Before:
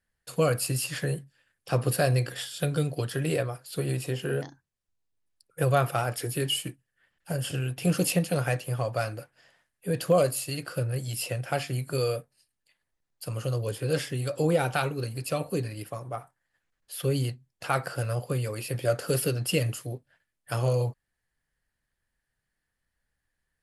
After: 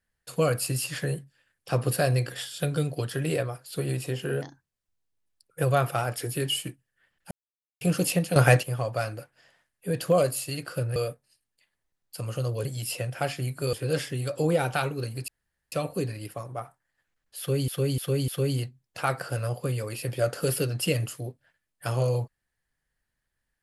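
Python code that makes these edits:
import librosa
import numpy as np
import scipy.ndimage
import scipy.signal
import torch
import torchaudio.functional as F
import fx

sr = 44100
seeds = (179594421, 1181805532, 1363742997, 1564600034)

y = fx.edit(x, sr, fx.silence(start_s=7.31, length_s=0.5),
    fx.clip_gain(start_s=8.36, length_s=0.27, db=9.5),
    fx.move(start_s=10.96, length_s=1.08, to_s=13.73),
    fx.insert_room_tone(at_s=15.28, length_s=0.44),
    fx.repeat(start_s=16.94, length_s=0.3, count=4), tone=tone)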